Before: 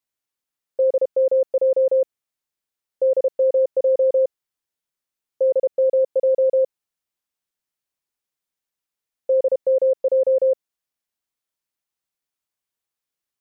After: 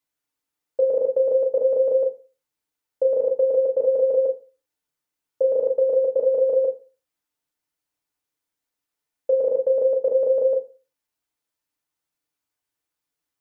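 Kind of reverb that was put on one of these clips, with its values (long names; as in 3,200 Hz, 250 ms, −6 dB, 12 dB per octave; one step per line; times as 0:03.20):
feedback delay network reverb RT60 0.34 s, low-frequency decay 1.05×, high-frequency decay 0.4×, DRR 0.5 dB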